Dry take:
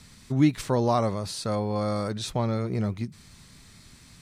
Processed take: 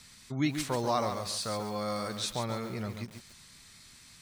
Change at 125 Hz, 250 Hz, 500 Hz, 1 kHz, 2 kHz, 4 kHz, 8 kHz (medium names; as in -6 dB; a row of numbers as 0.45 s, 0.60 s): -10.0 dB, -8.5 dB, -6.5 dB, -3.5 dB, -0.5 dB, +0.5 dB, +1.0 dB